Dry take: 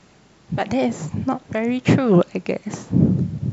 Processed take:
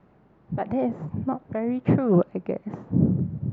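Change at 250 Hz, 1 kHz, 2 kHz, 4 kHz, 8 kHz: −4.5 dB, −5.5 dB, −13.5 dB, below −20 dB, can't be measured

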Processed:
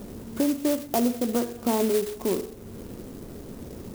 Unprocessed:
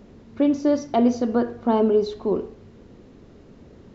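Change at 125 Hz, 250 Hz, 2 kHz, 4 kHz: −1.5, −4.5, 0.0, +3.0 decibels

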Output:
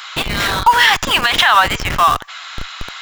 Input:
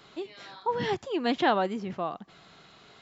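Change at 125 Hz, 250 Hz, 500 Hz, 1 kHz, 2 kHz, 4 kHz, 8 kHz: +15.0 dB, +2.5 dB, +4.0 dB, +17.5 dB, +22.5 dB, +23.5 dB, can't be measured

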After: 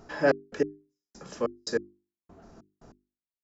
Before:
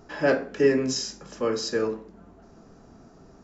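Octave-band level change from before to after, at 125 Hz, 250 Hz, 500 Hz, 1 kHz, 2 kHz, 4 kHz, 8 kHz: −6.5 dB, −7.0 dB, −5.0 dB, −2.0 dB, −3.5 dB, −10.0 dB, can't be measured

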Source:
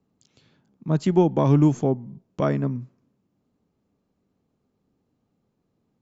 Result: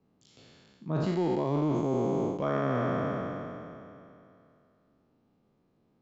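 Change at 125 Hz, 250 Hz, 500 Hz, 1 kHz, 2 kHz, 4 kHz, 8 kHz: −9.5 dB, −7.5 dB, −4.0 dB, −2.5 dB, +1.0 dB, −3.0 dB, can't be measured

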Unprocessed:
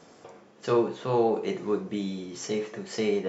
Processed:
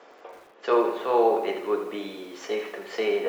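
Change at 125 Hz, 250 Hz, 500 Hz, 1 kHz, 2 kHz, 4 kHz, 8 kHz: below −15 dB, −2.0 dB, +3.0 dB, +6.0 dB, +5.5 dB, +1.5 dB, can't be measured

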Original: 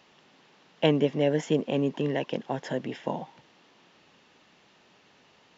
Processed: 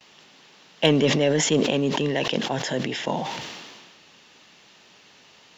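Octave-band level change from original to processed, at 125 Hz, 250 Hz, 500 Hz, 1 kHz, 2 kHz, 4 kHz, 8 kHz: +4.5 dB, +4.5 dB, +4.0 dB, +6.0 dB, +9.5 dB, +12.0 dB, can't be measured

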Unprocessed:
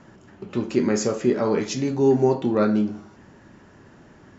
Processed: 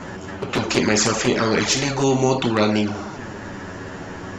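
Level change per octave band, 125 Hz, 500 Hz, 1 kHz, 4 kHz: +4.5, 0.0, +7.0, +14.5 decibels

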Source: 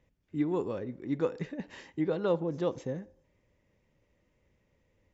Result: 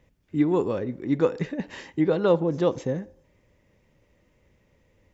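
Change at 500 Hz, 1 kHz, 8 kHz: +8.0 dB, +8.0 dB, can't be measured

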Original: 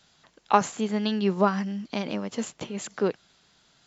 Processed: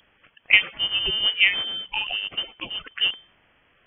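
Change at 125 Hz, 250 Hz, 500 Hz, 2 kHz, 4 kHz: −15.0, −20.5, −16.0, +16.0, +19.0 decibels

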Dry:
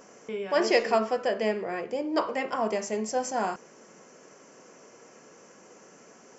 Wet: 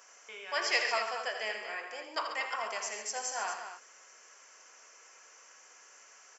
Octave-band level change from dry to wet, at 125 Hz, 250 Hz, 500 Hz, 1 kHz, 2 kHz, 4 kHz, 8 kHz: below −30 dB, −24.5 dB, −13.5 dB, −6.0 dB, +0.5 dB, +1.0 dB, can't be measured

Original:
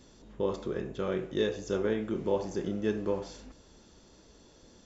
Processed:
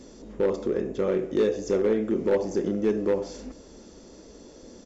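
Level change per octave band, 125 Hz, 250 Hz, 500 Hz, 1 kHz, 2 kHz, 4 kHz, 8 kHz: +2.0 dB, +6.0 dB, +7.0 dB, +2.0 dB, +1.5 dB, −1.5 dB, can't be measured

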